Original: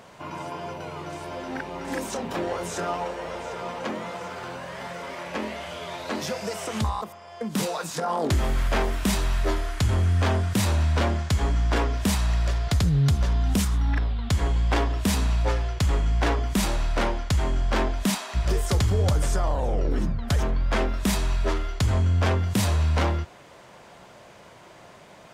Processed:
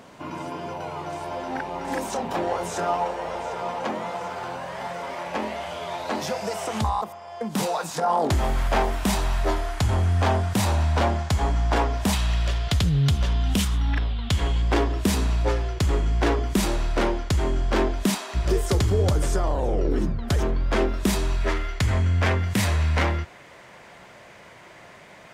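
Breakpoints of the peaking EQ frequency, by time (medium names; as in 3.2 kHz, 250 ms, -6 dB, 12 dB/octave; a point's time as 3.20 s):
peaking EQ +7.5 dB 0.71 oct
270 Hz
from 0.71 s 800 Hz
from 12.13 s 3.1 kHz
from 14.62 s 360 Hz
from 21.41 s 2 kHz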